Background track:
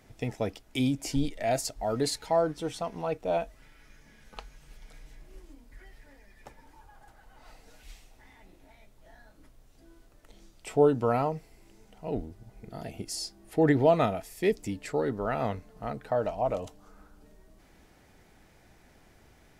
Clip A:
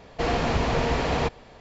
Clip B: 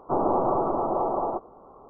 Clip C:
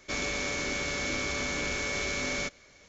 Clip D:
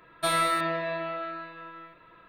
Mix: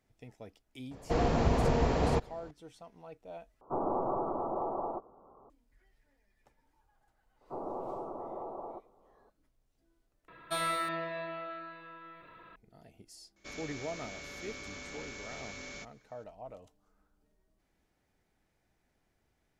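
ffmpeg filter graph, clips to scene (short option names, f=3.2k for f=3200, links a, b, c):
-filter_complex "[2:a]asplit=2[a][b];[0:a]volume=-18dB[c];[1:a]equalizer=f=2.8k:t=o:w=2.6:g=-9.5[d];[b]equalizer=f=480:w=1.5:g=3.5[e];[4:a]acompressor=mode=upward:threshold=-37dB:ratio=2.5:attack=3.2:release=140:knee=2.83:detection=peak[f];[c]asplit=3[g][h][i];[g]atrim=end=3.614[j];[a]atrim=end=1.89,asetpts=PTS-STARTPTS,volume=-9dB[k];[h]atrim=start=5.496:end=10.284[l];[f]atrim=end=2.28,asetpts=PTS-STARTPTS,volume=-7.5dB[m];[i]atrim=start=12.556[n];[d]atrim=end=1.6,asetpts=PTS-STARTPTS,volume=-2dB,afade=t=in:d=0.004:c=hsin,afade=t=out:st=1.596:d=0.004:c=hsin,adelay=910[o];[e]atrim=end=1.89,asetpts=PTS-STARTPTS,volume=-17.5dB,afade=t=in:d=0.004:c=hsin,afade=t=out:st=1.886:d=0.004:c=hsin,adelay=7410[p];[3:a]atrim=end=2.88,asetpts=PTS-STARTPTS,volume=-13.5dB,afade=t=in:d=0.004:c=hsin,afade=t=out:st=2.876:d=0.004:c=hsin,adelay=13360[q];[j][k]acrossfade=d=0.004:c1=hsin:c2=hsin[r];[r][l]acrossfade=d=0.004:c1=hsin:c2=hsin[s];[s][m]acrossfade=d=0.004:c1=hsin:c2=hsin[t];[t][n]acrossfade=d=0.004:c1=hsin:c2=hsin[u];[u][o][p][q]amix=inputs=4:normalize=0"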